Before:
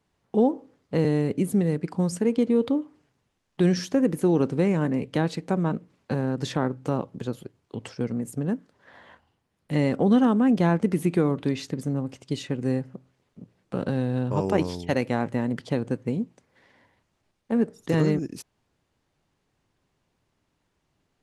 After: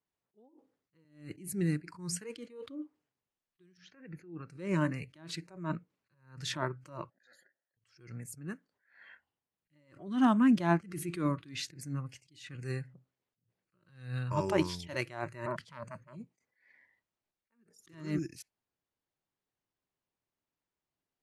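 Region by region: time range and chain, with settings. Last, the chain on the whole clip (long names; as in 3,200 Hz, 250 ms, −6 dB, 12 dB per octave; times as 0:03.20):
0:03.77–0:04.50: high-frequency loss of the air 240 metres + downward compressor 2.5 to 1, threshold −32 dBFS
0:07.10–0:07.77: mid-hump overdrive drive 28 dB, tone 6,600 Hz, clips at −17 dBFS + formant filter e + phaser with its sweep stopped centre 1,100 Hz, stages 4
0:15.46–0:16.16: parametric band 210 Hz +9.5 dB 0.46 octaves + saturating transformer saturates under 950 Hz
whole clip: noise reduction from a noise print of the clip's start 17 dB; low-shelf EQ 210 Hz −8 dB; level that may rise only so fast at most 120 dB per second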